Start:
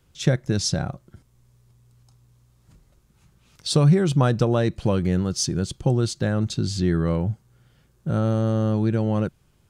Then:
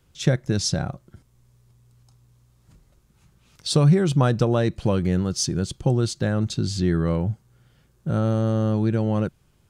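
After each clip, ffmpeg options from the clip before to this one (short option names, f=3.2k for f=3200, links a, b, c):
-af anull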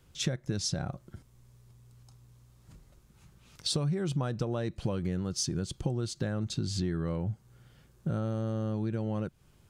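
-af "acompressor=threshold=-29dB:ratio=5"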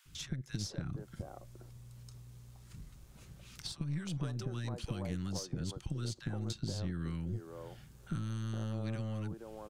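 -filter_complex "[0:a]acrossover=split=190|1100|5200[a][b][c][d];[a]acompressor=threshold=-43dB:ratio=4[e];[b]acompressor=threshold=-49dB:ratio=4[f];[c]acompressor=threshold=-54dB:ratio=4[g];[d]acompressor=threshold=-57dB:ratio=4[h];[e][f][g][h]amix=inputs=4:normalize=0,acrossover=split=320|1100[i][j][k];[i]adelay=50[l];[j]adelay=470[m];[l][m][k]amix=inputs=3:normalize=0,aeval=exprs='(tanh(44.7*val(0)+0.6)-tanh(0.6))/44.7':c=same,volume=7.5dB"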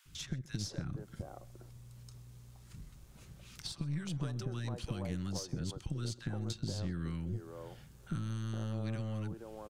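-af "aecho=1:1:129:0.0841"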